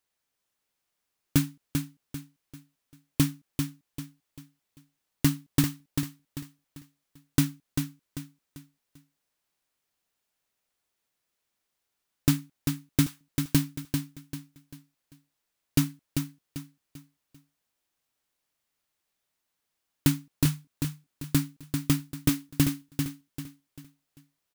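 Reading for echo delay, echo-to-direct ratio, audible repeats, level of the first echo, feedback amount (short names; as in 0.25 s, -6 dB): 0.393 s, -5.5 dB, 4, -6.0 dB, 35%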